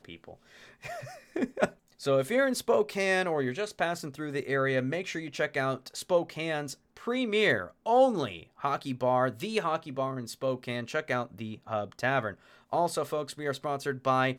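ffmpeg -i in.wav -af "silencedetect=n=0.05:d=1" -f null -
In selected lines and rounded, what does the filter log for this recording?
silence_start: 0.00
silence_end: 1.36 | silence_duration: 1.36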